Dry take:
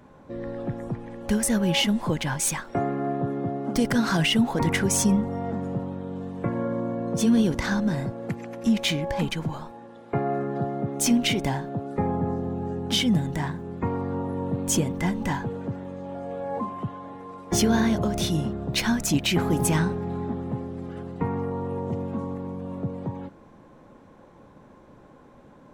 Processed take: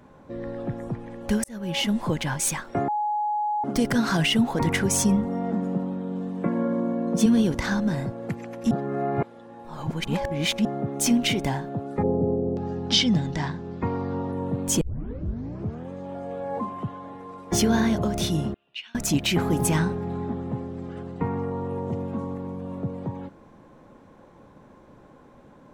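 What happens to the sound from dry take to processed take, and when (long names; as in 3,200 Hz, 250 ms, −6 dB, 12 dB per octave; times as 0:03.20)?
0:01.44–0:01.96: fade in
0:02.88–0:03.64: beep over 839 Hz −22.5 dBFS
0:05.25–0:07.26: low shelf with overshoot 150 Hz −8 dB, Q 3
0:08.71–0:10.65: reverse
0:12.02–0:14.31: auto-filter low-pass square 0.32 Hz → 0.1 Hz 490–5,100 Hz
0:14.81: tape start 1.11 s
0:18.54–0:18.95: resonant band-pass 2,800 Hz, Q 11
0:20.13–0:21.71: Butterworth low-pass 9,300 Hz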